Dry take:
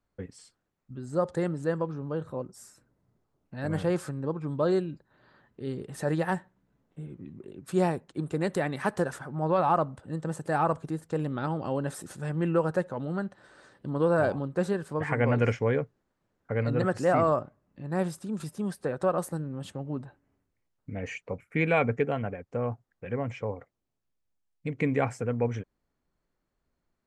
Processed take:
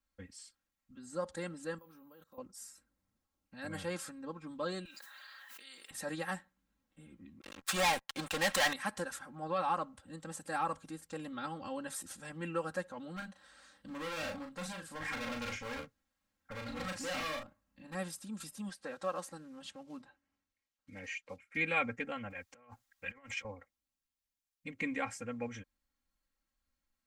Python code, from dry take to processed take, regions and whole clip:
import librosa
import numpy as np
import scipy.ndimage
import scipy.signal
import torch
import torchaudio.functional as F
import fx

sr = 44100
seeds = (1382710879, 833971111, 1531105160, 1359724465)

y = fx.chain(x, sr, fx.peak_eq(hz=74.0, db=-10.5, octaves=2.0),
    fx.level_steps(step_db=23),
    fx.resample_bad(factor=3, down='none', up='hold'), at=(1.78, 2.38))
y = fx.chain(y, sr, fx.highpass(hz=1200.0, slope=12),
    fx.high_shelf(hz=11000.0, db=9.5),
    fx.env_flatten(amount_pct=100), at=(4.85, 5.91))
y = fx.chain(y, sr, fx.lowpass(hz=3400.0, slope=6),
    fx.low_shelf_res(hz=500.0, db=-12.5, q=1.5),
    fx.leveller(passes=5), at=(7.41, 8.73))
y = fx.chain(y, sr, fx.overload_stage(gain_db=28.0),
    fx.notch(hz=370.0, q=5.0),
    fx.doubler(ms=38.0, db=-5.0), at=(13.16, 17.95))
y = fx.chain(y, sr, fx.block_float(bits=7),
    fx.lowpass(hz=6500.0, slope=12),
    fx.low_shelf(hz=160.0, db=-9.0), at=(18.69, 21.57))
y = fx.chain(y, sr, fx.tilt_shelf(db=-6.0, hz=760.0),
    fx.over_compress(threshold_db=-40.0, ratio=-0.5), at=(22.3, 23.45))
y = fx.tone_stack(y, sr, knobs='5-5-5')
y = y + 1.0 * np.pad(y, (int(3.7 * sr / 1000.0), 0))[:len(y)]
y = y * 10.0 ** (4.0 / 20.0)